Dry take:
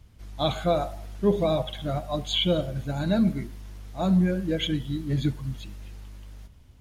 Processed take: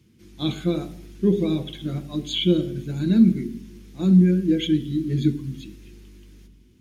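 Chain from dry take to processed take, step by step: EQ curve 100 Hz 0 dB, 390 Hz +9 dB, 630 Hz -14 dB, 3100 Hz -1 dB; reverb RT60 0.70 s, pre-delay 3 ms, DRR 11 dB

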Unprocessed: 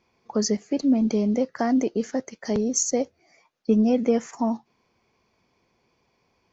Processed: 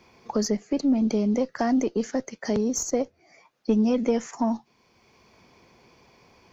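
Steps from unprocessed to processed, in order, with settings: one diode to ground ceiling -10.5 dBFS; three-band squash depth 40%

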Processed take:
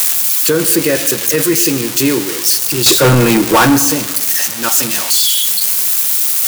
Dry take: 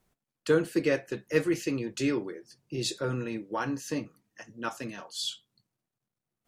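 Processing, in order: switching spikes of -18.5 dBFS; 2.86–3.79 sample leveller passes 5; on a send at -14 dB: reverb RT60 0.95 s, pre-delay 0.102 s; on the sum: maximiser +21 dB; gain -3 dB

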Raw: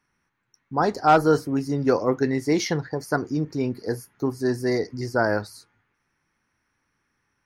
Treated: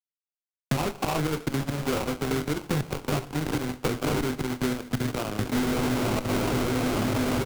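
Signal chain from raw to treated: LPF 3900 Hz 24 dB/oct; low shelf 320 Hz +6.5 dB; doubler 20 ms -6 dB; diffused feedback echo 0.984 s, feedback 53%, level -10.5 dB; flipped gate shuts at -18 dBFS, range -31 dB; chopper 2.6 Hz, depth 65%, duty 30%; fuzz box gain 51 dB, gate -60 dBFS; reverb RT60 0.45 s, pre-delay 4 ms, DRR 9.5 dB; compressor, threshold -17 dBFS, peak gain reduction 6.5 dB; low shelf 78 Hz +9 dB; sample-rate reducer 1800 Hz, jitter 20%; three-band squash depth 70%; gain -7.5 dB

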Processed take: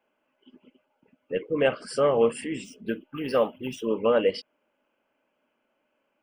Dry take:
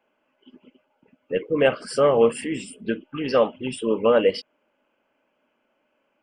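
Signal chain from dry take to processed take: 2.64–3.88 decimation joined by straight lines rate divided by 3×; gain -4 dB

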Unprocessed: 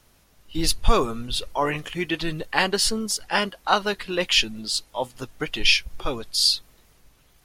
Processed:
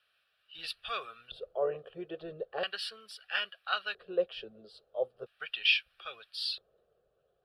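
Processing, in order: LFO band-pass square 0.38 Hz 470–2200 Hz; fixed phaser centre 1400 Hz, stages 8

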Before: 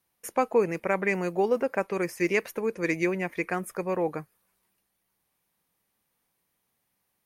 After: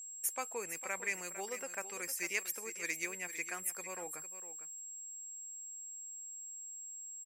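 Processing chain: pre-emphasis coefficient 0.97; whine 7600 Hz -48 dBFS; echo 0.453 s -12 dB; gain +3 dB

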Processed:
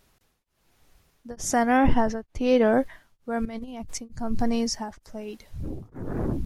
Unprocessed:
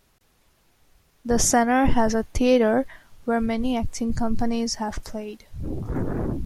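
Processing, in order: 1.76–2.72 high shelf 4900 Hz -> 9000 Hz -10 dB; 3.45–3.98 negative-ratio compressor -30 dBFS, ratio -0.5; beating tremolo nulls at 1.1 Hz

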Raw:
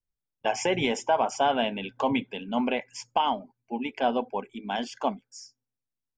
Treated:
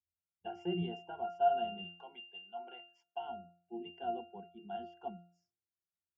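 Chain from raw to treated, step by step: 1.84–3.2 HPF 700 Hz 12 dB/oct; octave resonator F, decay 0.45 s; gain +6 dB

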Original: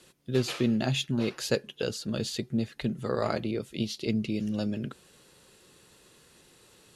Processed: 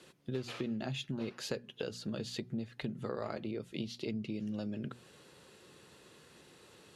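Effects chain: HPF 75 Hz; high shelf 5500 Hz -10 dB; notches 60/120/180/240 Hz; compressor 4:1, threshold -38 dBFS, peak gain reduction 15 dB; gain +1.5 dB

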